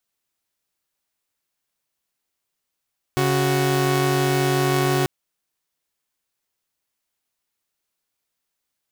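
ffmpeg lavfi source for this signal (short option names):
-f lavfi -i "aevalsrc='0.126*((2*mod(138.59*t,1)-1)+(2*mod(369.99*t,1)-1))':d=1.89:s=44100"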